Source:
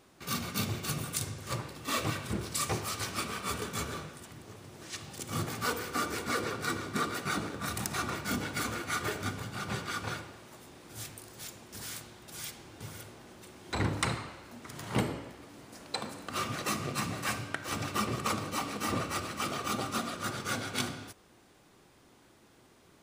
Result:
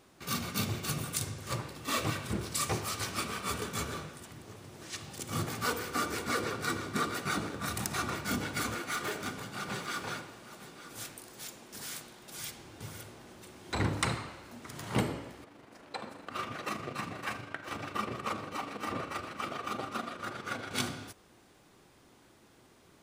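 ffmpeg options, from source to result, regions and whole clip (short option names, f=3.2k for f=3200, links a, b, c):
-filter_complex "[0:a]asettb=1/sr,asplit=3[a][b][c];[a]atrim=end=8.754[d];[b]atrim=start=8.75:end=12.4,asetpts=PTS-STARTPTS,afade=t=in:d=0.004:c=qsin,afade=t=out:st=3.646:d=0.004:c=qsin,asoftclip=type=hard:threshold=-29.5dB,equalizer=f=85:t=o:w=0.82:g=-14.5,aecho=1:1:904:0.188,atrim=end_sample=160965[e];[c]atrim=start=12.396[f];[d][e]acrossfade=d=0.004:c1=hsin:c2=qsin[g];[g][f]acrossfade=d=0.004:c1=qsin:c2=hsin,asettb=1/sr,asplit=3[h][i][j];[h]atrim=end=15.444[k];[i]atrim=start=15.44:end=20.71,asetpts=PTS-STARTPTS,afade=t=in:d=0.004:c=qsin,afade=t=out:st=5.266:d=0.004:c=qsin,bass=f=250:g=-6,treble=f=4k:g=-11,tremolo=f=25:d=0.462[l];[j]atrim=start=20.706[m];[k][l]acrossfade=d=0.004:c1=hsin:c2=qsin[n];[n][m]acrossfade=d=0.004:c1=qsin:c2=hsin"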